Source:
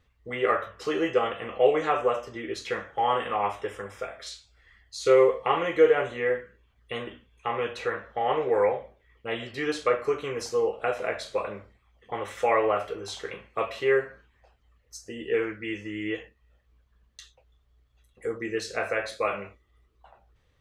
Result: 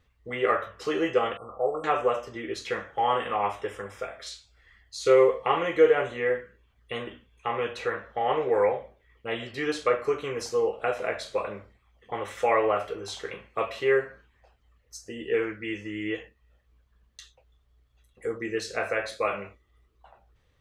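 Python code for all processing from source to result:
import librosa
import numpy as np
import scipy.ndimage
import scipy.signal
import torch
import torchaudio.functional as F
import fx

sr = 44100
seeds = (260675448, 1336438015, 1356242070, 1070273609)

y = fx.chain(x, sr, fx.brickwall_bandstop(low_hz=1400.0, high_hz=7600.0),
    fx.peak_eq(hz=270.0, db=-10.0, octaves=2.4), at=(1.37, 1.84))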